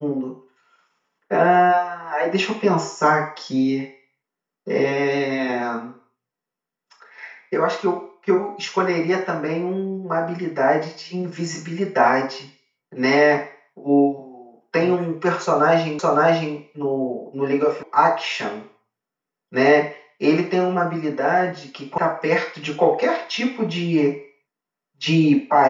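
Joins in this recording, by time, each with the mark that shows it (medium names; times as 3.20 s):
15.99 s: repeat of the last 0.56 s
17.83 s: sound stops dead
21.98 s: sound stops dead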